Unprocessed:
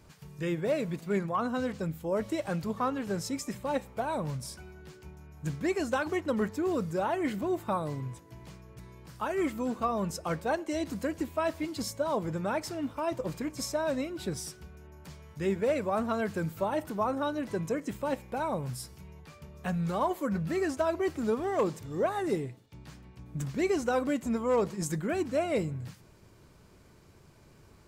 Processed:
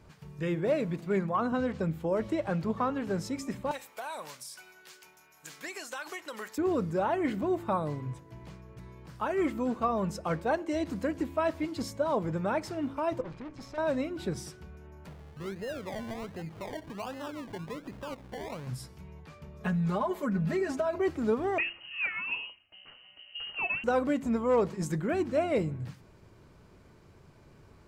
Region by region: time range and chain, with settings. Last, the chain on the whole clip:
1.52–2.90 s: treble shelf 6.7 kHz -6 dB + three bands compressed up and down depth 70%
3.71–6.58 s: high-pass 590 Hz 6 dB/octave + tilt EQ +4.5 dB/octave + compression 5:1, threshold -35 dBFS
13.21–13.78 s: low-pass 4 kHz + valve stage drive 40 dB, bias 0.7
15.07–18.67 s: compression 2:1, threshold -44 dBFS + decimation with a swept rate 27×, swing 60% 1.3 Hz
19.60–20.98 s: comb 4.8 ms, depth 94% + compression 5:1, threshold -27 dBFS
21.58–23.84 s: frequency inversion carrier 3 kHz + distance through air 270 m
whole clip: treble shelf 4.8 kHz -10.5 dB; de-hum 68.1 Hz, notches 5; trim +1.5 dB

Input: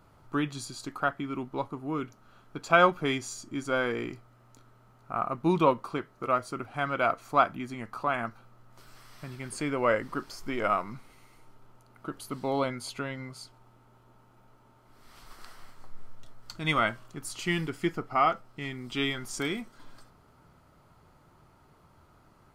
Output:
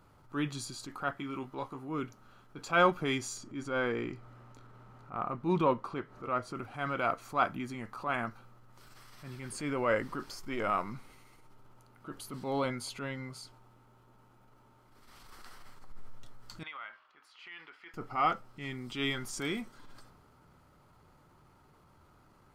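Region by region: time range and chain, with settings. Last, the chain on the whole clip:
1.18–1.89 s: bass shelf 360 Hz -8 dB + doubling 15 ms -4 dB
3.37–6.55 s: low-pass 3.3 kHz 6 dB/octave + upward compressor, threshold -42 dBFS
16.63–17.94 s: high-pass 1.2 kHz + compression 5:1, threshold -35 dBFS + distance through air 360 m
whole clip: band-stop 660 Hz, Q 14; transient shaper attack -7 dB, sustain +2 dB; trim -2 dB

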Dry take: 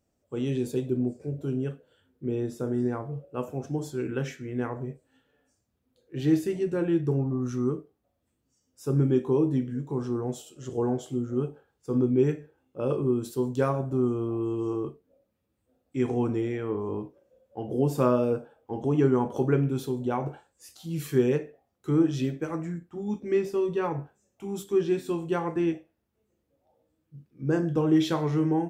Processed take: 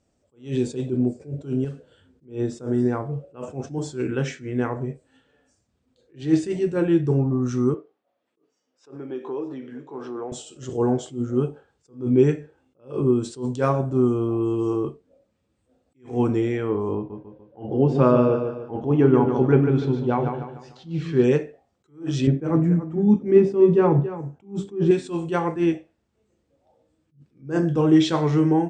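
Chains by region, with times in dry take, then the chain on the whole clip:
1.64–2.25 s: bass shelf 340 Hz +6.5 dB + modulation noise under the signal 31 dB + compression 2.5:1, threshold -37 dBFS
7.74–10.32 s: compression 4:1, threshold -28 dBFS + band-pass 410–3400 Hz + delay 630 ms -18.5 dB
16.95–21.24 s: distance through air 220 m + feedback delay 147 ms, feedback 40%, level -6.5 dB
22.27–24.91 s: high-pass 130 Hz + tilt EQ -4 dB/octave + delay 282 ms -13.5 dB
whole clip: elliptic low-pass 8.5 kHz, stop band 40 dB; attacks held to a fixed rise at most 190 dB/s; trim +7 dB

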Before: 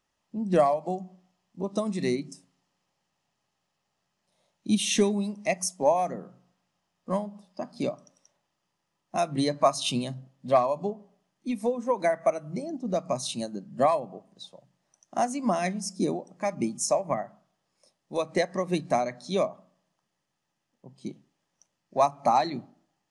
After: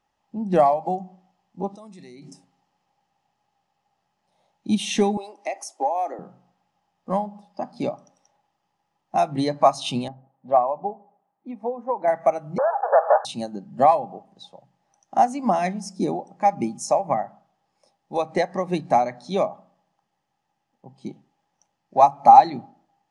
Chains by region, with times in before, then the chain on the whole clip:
1.75–2.30 s: treble shelf 3 kHz +8.5 dB + level held to a coarse grid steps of 23 dB
5.17–6.19 s: elliptic high-pass 290 Hz + compression, threshold -27 dBFS
10.08–12.08 s: Chebyshev low-pass 840 Hz + tilt EQ +3.5 dB/octave
12.58–13.25 s: waveshaping leveller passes 5 + brick-wall FIR band-pass 430–1800 Hz
whole clip: low-pass 3.9 kHz 6 dB/octave; peaking EQ 810 Hz +14 dB 0.21 oct; trim +2.5 dB

